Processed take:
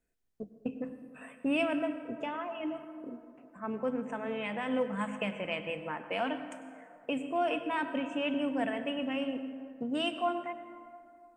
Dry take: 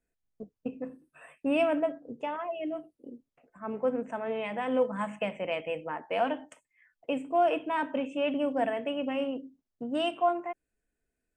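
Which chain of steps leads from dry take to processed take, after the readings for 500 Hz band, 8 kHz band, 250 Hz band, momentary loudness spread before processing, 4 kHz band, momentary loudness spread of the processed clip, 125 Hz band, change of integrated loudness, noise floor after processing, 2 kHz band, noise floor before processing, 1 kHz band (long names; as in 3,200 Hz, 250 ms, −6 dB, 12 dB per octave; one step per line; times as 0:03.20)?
−5.0 dB, can't be measured, −0.5 dB, 15 LU, +1.0 dB, 16 LU, +1.5 dB, −3.5 dB, −60 dBFS, +0.5 dB, −85 dBFS, −4.5 dB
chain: dynamic equaliser 620 Hz, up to −8 dB, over −40 dBFS, Q 0.77
dense smooth reverb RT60 2.4 s, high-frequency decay 0.45×, pre-delay 85 ms, DRR 10 dB
level +1.5 dB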